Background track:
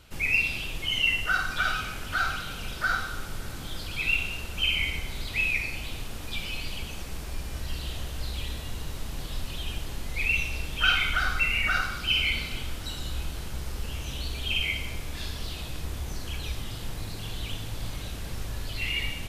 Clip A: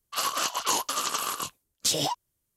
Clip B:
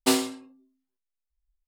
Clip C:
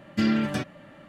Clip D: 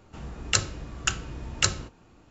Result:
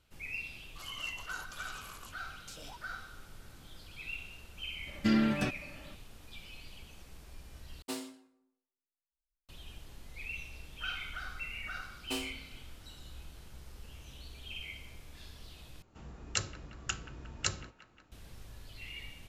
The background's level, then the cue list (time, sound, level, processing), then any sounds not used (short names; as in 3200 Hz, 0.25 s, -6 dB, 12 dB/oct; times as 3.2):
background track -16 dB
0.63 add A -16.5 dB + compressor, threshold -29 dBFS
4.87 add C -4 dB
7.82 replace with B -17.5 dB + plate-style reverb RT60 0.83 s, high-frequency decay 0.65×, DRR 12 dB
12.04 add B -16.5 dB
15.82 replace with D -10 dB + band-limited delay 0.179 s, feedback 62%, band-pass 1300 Hz, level -15.5 dB